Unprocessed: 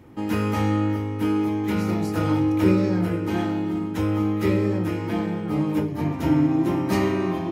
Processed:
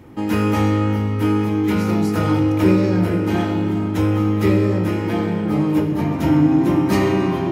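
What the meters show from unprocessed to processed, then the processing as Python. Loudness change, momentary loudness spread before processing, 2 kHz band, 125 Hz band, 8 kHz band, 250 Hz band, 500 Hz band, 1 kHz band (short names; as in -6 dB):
+5.0 dB, 6 LU, +5.0 dB, +6.0 dB, n/a, +4.5 dB, +5.0 dB, +4.5 dB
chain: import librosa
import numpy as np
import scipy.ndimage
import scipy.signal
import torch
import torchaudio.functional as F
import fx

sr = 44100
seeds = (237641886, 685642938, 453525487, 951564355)

p1 = fx.rev_freeverb(x, sr, rt60_s=4.8, hf_ratio=0.6, predelay_ms=45, drr_db=8.5)
p2 = 10.0 ** (-18.5 / 20.0) * np.tanh(p1 / 10.0 ** (-18.5 / 20.0))
p3 = p1 + (p2 * librosa.db_to_amplitude(-7.0))
y = p3 * librosa.db_to_amplitude(2.0)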